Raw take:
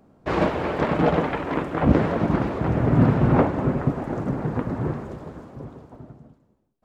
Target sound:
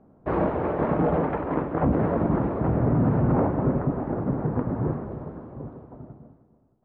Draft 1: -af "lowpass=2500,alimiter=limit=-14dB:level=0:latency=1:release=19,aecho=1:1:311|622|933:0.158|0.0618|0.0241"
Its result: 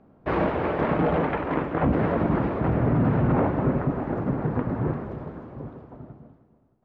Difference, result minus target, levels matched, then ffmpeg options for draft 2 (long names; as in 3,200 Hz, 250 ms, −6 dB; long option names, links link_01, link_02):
2,000 Hz band +5.5 dB
-af "lowpass=1200,alimiter=limit=-14dB:level=0:latency=1:release=19,aecho=1:1:311|622|933:0.158|0.0618|0.0241"